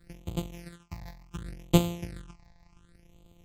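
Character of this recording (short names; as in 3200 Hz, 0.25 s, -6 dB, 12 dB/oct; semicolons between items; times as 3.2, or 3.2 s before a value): a buzz of ramps at a fixed pitch in blocks of 256 samples; phasing stages 8, 0.69 Hz, lowest notch 390–1700 Hz; MP3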